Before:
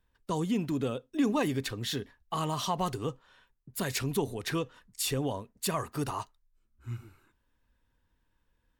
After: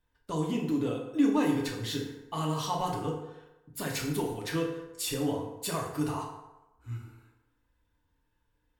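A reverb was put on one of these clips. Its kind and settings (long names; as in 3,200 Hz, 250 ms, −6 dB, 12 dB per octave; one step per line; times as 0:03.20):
feedback delay network reverb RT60 1 s, low-frequency decay 0.8×, high-frequency decay 0.6×, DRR −2 dB
level −4.5 dB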